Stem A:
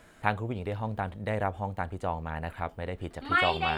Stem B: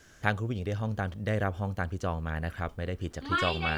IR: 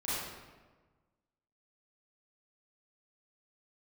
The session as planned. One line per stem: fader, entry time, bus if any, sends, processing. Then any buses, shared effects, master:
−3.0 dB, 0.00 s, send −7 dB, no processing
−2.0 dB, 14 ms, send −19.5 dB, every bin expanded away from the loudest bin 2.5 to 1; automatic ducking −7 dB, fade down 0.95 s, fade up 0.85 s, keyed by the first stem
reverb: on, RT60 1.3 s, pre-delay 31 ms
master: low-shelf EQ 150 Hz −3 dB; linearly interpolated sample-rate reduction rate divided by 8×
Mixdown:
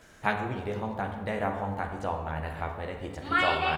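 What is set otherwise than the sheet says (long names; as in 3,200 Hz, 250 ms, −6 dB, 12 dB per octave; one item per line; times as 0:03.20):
stem B: missing every bin expanded away from the loudest bin 2.5 to 1
master: missing linearly interpolated sample-rate reduction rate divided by 8×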